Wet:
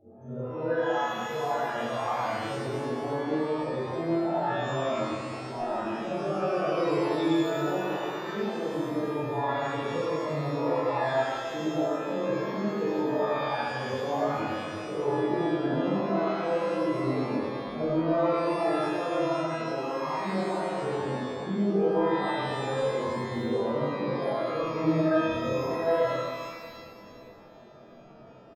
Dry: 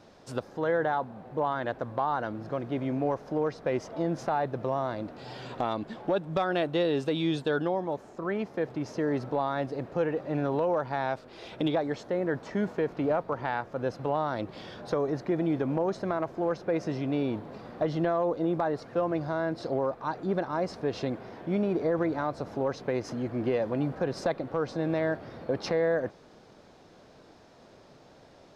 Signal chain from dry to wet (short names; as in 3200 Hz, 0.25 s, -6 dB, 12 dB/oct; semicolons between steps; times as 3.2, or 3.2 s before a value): phase scrambler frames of 0.2 s; 24.83–25.47 low shelf 490 Hz +8.5 dB; in parallel at +1 dB: compressor, threshold -38 dBFS, peak gain reduction 18 dB; on the sum: chorus voices 6, 0.13 Hz, delay 23 ms, depth 2.8 ms; loudest bins only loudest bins 16; on a send: feedback echo 0.637 s, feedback 48%, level -21.5 dB; on the sum: shimmer reverb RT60 1.6 s, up +12 st, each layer -8 dB, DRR -8.5 dB; gain -7 dB